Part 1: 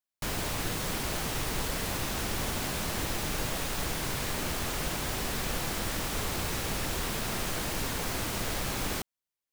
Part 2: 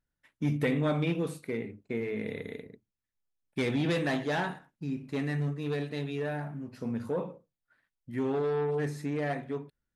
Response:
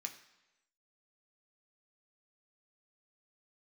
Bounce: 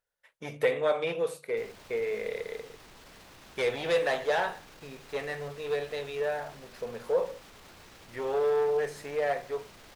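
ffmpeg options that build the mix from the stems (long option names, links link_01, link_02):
-filter_complex "[0:a]acrossover=split=6200[link_01][link_02];[link_02]acompressor=threshold=-45dB:ratio=4:attack=1:release=60[link_03];[link_01][link_03]amix=inputs=2:normalize=0,alimiter=level_in=5dB:limit=-24dB:level=0:latency=1:release=18,volume=-5dB,adelay=1350,volume=-13dB[link_04];[1:a]lowshelf=frequency=370:width_type=q:width=3:gain=-9,volume=2dB[link_05];[link_04][link_05]amix=inputs=2:normalize=0,lowshelf=frequency=290:gain=-5,bandreject=frequency=50:width_type=h:width=6,bandreject=frequency=100:width_type=h:width=6,bandreject=frequency=150:width_type=h:width=6"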